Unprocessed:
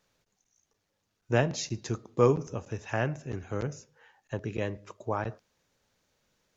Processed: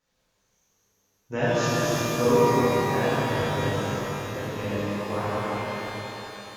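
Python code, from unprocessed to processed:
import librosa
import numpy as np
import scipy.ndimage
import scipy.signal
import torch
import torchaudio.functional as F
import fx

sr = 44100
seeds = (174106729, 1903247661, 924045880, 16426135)

y = fx.reverse_delay_fb(x, sr, ms=174, feedback_pct=62, wet_db=-5.0)
y = fx.rev_shimmer(y, sr, seeds[0], rt60_s=3.5, semitones=12, shimmer_db=-8, drr_db=-11.5)
y = F.gain(torch.from_numpy(y), -8.0).numpy()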